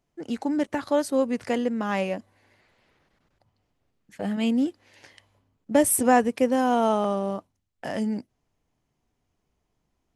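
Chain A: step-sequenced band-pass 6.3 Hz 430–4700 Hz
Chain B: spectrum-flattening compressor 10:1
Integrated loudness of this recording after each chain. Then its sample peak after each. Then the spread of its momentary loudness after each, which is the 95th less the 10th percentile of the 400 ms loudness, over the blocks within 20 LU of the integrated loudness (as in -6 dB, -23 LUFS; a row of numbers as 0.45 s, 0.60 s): -35.5 LUFS, -34.0 LUFS; -15.5 dBFS, -8.0 dBFS; 18 LU, 17 LU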